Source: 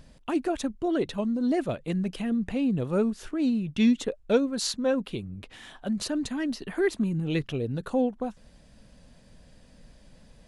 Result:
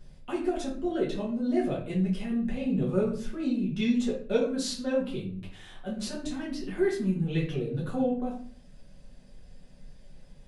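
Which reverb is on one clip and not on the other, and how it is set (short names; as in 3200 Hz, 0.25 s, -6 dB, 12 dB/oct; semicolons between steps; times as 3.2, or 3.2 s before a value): shoebox room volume 44 m³, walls mixed, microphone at 1.3 m; gain -10.5 dB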